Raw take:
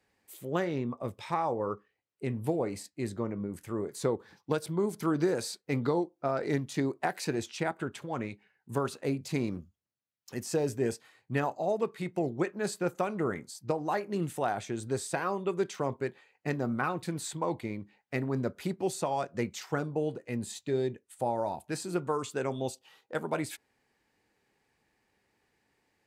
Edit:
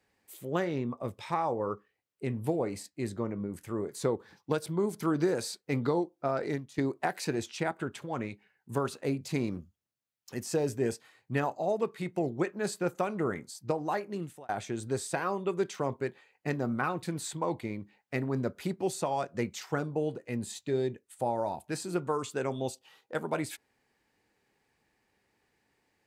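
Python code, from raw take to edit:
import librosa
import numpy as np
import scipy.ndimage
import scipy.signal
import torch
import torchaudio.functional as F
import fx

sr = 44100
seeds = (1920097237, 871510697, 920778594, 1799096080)

y = fx.edit(x, sr, fx.fade_out_to(start_s=6.45, length_s=0.33, curve='qua', floor_db=-12.0),
    fx.fade_out_span(start_s=13.72, length_s=0.77, curve='qsin'), tone=tone)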